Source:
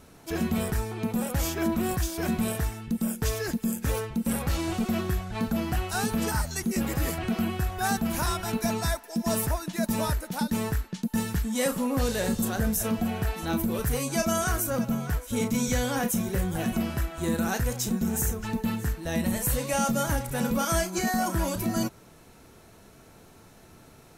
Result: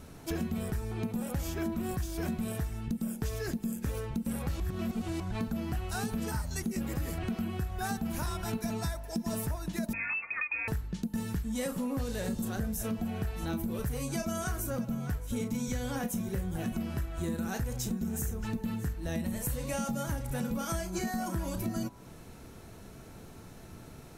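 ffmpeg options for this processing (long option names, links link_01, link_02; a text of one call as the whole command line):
ffmpeg -i in.wav -filter_complex "[0:a]asettb=1/sr,asplit=3[link_01][link_02][link_03];[link_01]atrim=end=9.934[link_04];[link_02]atrim=start=9.93:end=10.68,asetpts=PTS-STARTPTS,afade=type=in:duration=0.004:curve=qsin,afade=type=out:start_time=0.746:duration=0.004:curve=qsin,lowpass=frequency=2300:width_type=q:width=0.5098,lowpass=frequency=2300:width_type=q:width=0.6013,lowpass=frequency=2300:width_type=q:width=0.9,lowpass=frequency=2300:width_type=q:width=2.563,afreqshift=-2700[link_05];[link_03]atrim=start=10.676[link_06];[link_04][link_05]acrossfade=duration=0.004:curve1=hsin:curve2=qsin[link_07];[link_07][link_06]acrossfade=duration=0.004:curve1=qsin:curve2=hsin,asplit=3[link_08][link_09][link_10];[link_08]atrim=end=4.602[link_11];[link_09]atrim=start=4.598:end=5.202,asetpts=PTS-STARTPTS,areverse[link_12];[link_10]atrim=start=5.198[link_13];[link_11][link_12]acrossfade=duration=0.004:curve1=hsin:curve2=hsin[link_14];[link_14][link_13]acrossfade=duration=0.004:curve1=hsin:curve2=hsin,lowshelf=frequency=320:gain=7,bandreject=frequency=51.76:width_type=h:width=4,bandreject=frequency=103.52:width_type=h:width=4,bandreject=frequency=155.28:width_type=h:width=4,bandreject=frequency=207.04:width_type=h:width=4,bandreject=frequency=258.8:width_type=h:width=4,bandreject=frequency=310.56:width_type=h:width=4,bandreject=frequency=362.32:width_type=h:width=4,bandreject=frequency=414.08:width_type=h:width=4,bandreject=frequency=465.84:width_type=h:width=4,bandreject=frequency=517.6:width_type=h:width=4,bandreject=frequency=569.36:width_type=h:width=4,bandreject=frequency=621.12:width_type=h:width=4,bandreject=frequency=672.88:width_type=h:width=4,bandreject=frequency=724.64:width_type=h:width=4,bandreject=frequency=776.4:width_type=h:width=4,bandreject=frequency=828.16:width_type=h:width=4,bandreject=frequency=879.92:width_type=h:width=4,bandreject=frequency=931.68:width_type=h:width=4,bandreject=frequency=983.44:width_type=h:width=4,bandreject=frequency=1035.2:width_type=h:width=4,bandreject=frequency=1086.96:width_type=h:width=4,bandreject=frequency=1138.72:width_type=h:width=4,acompressor=threshold=-31dB:ratio=6" out.wav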